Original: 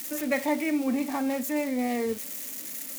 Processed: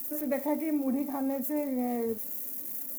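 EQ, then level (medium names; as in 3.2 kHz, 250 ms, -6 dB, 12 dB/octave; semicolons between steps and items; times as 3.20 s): FFT filter 670 Hz 0 dB, 3 kHz -15 dB, 7.6 kHz -9 dB, 14 kHz +5 dB; -2.5 dB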